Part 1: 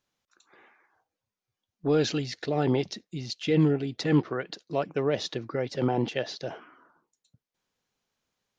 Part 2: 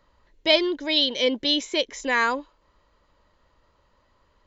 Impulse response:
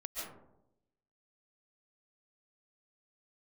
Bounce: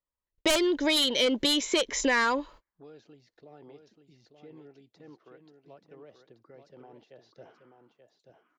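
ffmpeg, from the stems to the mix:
-filter_complex "[0:a]acrossover=split=330|1200[a][b][c];[a]acompressor=threshold=-40dB:ratio=4[d];[b]acompressor=threshold=-28dB:ratio=4[e];[c]acompressor=threshold=-47dB:ratio=4[f];[d][e][f]amix=inputs=3:normalize=0,adelay=950,volume=-11.5dB,afade=t=in:st=7.14:d=0.58:silence=0.354813,asplit=2[g][h];[h]volume=-7.5dB[i];[1:a]aeval=exprs='0.562*sin(PI/2*3.16*val(0)/0.562)':c=same,agate=range=-41dB:threshold=-38dB:ratio=16:detection=peak,volume=-6dB[j];[i]aecho=0:1:882:1[k];[g][j][k]amix=inputs=3:normalize=0,acompressor=threshold=-22dB:ratio=10"

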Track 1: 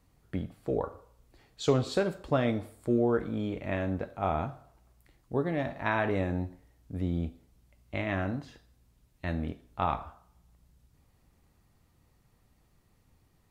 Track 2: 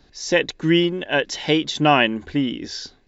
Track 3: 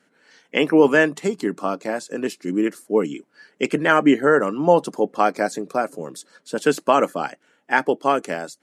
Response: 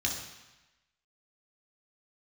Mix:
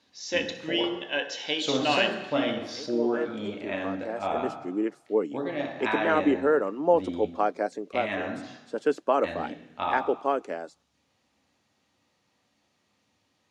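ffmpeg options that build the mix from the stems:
-filter_complex "[0:a]volume=-0.5dB,asplit=2[a][b];[b]volume=-5dB[c];[1:a]volume=-10.5dB,asplit=3[d][e][f];[e]volume=-8.5dB[g];[2:a]tiltshelf=f=970:g=6.5,adelay=2200,volume=-8dB[h];[f]apad=whole_len=477365[i];[h][i]sidechaincompress=threshold=-53dB:ratio=3:attack=6.4:release=1040[j];[3:a]atrim=start_sample=2205[k];[c][g]amix=inputs=2:normalize=0[l];[l][k]afir=irnorm=-1:irlink=0[m];[a][d][j][m]amix=inputs=4:normalize=0,highpass=360,lowpass=6.3k"

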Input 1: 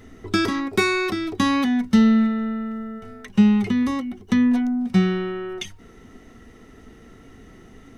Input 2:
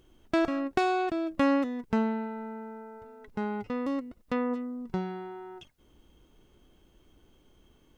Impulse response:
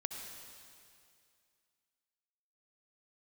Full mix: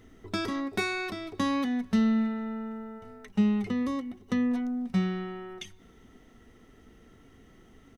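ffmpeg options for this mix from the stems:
-filter_complex "[0:a]volume=-10.5dB,asplit=2[a][b];[b]volume=-19dB[c];[1:a]acompressor=threshold=-32dB:ratio=6,adelay=0.8,volume=-3.5dB[d];[2:a]atrim=start_sample=2205[e];[c][e]afir=irnorm=-1:irlink=0[f];[a][d][f]amix=inputs=3:normalize=0"

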